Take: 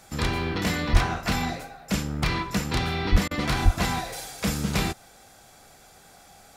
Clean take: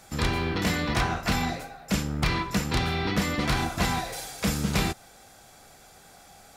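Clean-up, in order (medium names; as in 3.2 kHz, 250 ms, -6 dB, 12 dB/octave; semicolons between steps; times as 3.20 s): de-plosive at 0.92/3.11/3.64 s; interpolate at 3.28 s, 29 ms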